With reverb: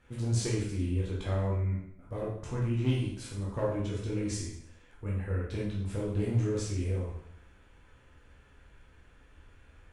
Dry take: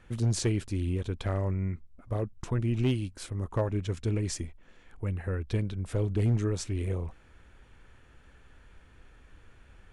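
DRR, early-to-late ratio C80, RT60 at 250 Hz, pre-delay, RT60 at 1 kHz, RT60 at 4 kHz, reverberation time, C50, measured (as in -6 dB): -6.0 dB, 6.0 dB, 0.75 s, 6 ms, 0.70 s, 0.70 s, 0.70 s, 2.0 dB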